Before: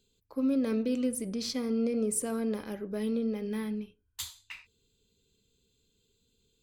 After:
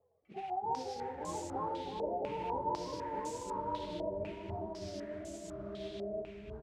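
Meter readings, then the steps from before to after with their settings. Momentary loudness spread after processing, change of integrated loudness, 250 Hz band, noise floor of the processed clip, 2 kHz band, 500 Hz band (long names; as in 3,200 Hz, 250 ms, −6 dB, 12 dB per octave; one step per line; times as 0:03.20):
8 LU, −7.5 dB, −14.0 dB, −55 dBFS, −6.0 dB, −3.5 dB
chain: frequency axis turned over on the octave scale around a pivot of 450 Hz
downward compressor 12 to 1, threshold −41 dBFS, peak gain reduction 16.5 dB
sample-and-hold tremolo
noise that follows the level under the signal 14 dB
flanger 1.2 Hz, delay 8.9 ms, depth 7 ms, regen −71%
delay with pitch and tempo change per echo 222 ms, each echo −7 semitones, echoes 2
on a send: repeating echo 329 ms, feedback 47%, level −5.5 dB
on the sum: low-pass on a step sequencer 4 Hz 630–7,300 Hz
level +7.5 dB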